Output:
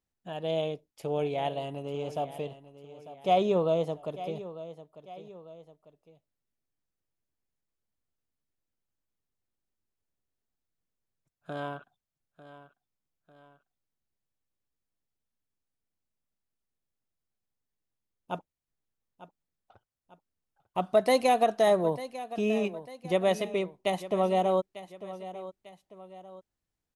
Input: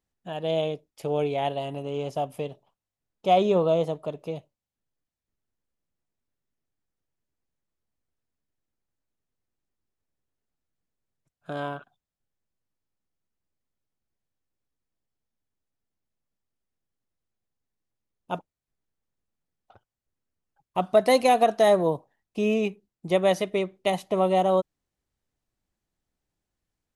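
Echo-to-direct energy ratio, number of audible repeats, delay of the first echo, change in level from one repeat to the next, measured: -14.0 dB, 2, 897 ms, -7.0 dB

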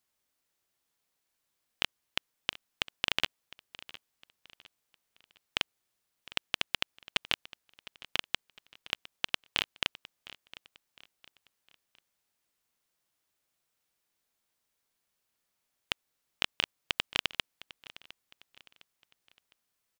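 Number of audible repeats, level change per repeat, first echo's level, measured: 2, -8.5 dB, -18.5 dB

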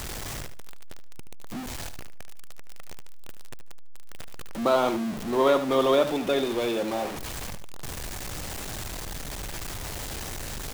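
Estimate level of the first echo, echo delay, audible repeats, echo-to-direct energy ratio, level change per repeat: -11.0 dB, 75 ms, 2, -11.0 dB, -13.5 dB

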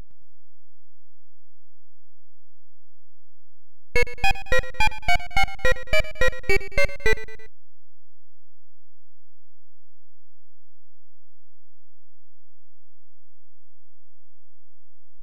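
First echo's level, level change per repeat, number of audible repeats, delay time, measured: -17.0 dB, -5.0 dB, 3, 111 ms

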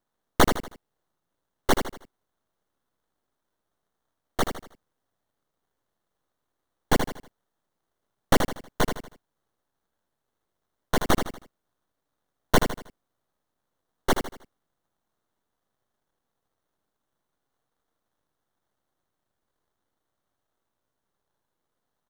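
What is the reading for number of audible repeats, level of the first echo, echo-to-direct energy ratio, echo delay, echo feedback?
4, -7.5 dB, -7.0 dB, 79 ms, 38%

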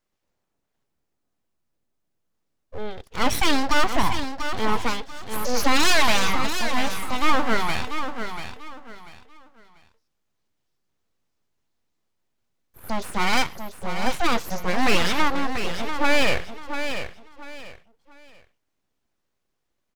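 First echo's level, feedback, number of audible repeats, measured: -8.5 dB, 27%, 3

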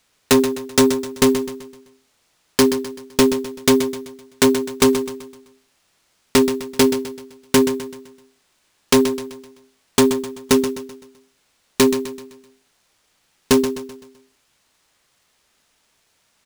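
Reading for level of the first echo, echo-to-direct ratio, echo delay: -10.5 dB, -9.5 dB, 128 ms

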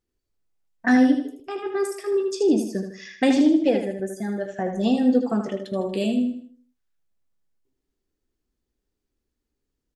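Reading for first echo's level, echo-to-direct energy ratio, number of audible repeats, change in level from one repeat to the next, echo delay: -7.0 dB, -6.5 dB, 4, -8.0 dB, 78 ms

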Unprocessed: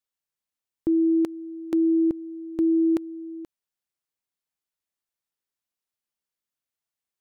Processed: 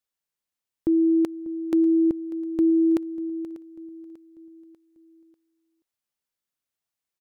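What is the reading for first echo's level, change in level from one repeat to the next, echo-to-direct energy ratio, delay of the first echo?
-18.0 dB, -7.0 dB, -17.0 dB, 593 ms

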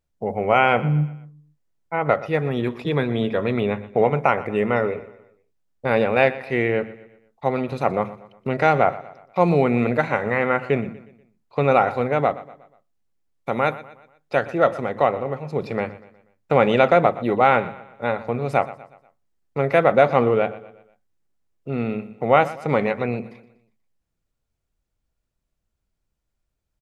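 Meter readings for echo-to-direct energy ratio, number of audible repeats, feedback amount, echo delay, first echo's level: -16.0 dB, 3, 44%, 121 ms, -17.0 dB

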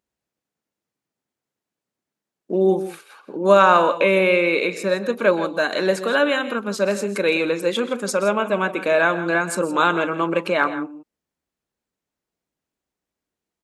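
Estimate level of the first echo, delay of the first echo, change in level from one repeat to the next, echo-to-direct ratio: -17.0 dB, 126 ms, no regular repeats, -12.5 dB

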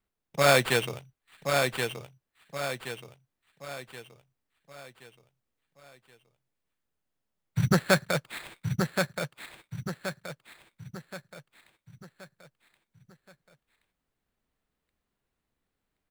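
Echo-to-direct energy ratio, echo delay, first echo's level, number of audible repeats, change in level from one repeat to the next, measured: -4.0 dB, 1075 ms, -5.0 dB, 5, -7.5 dB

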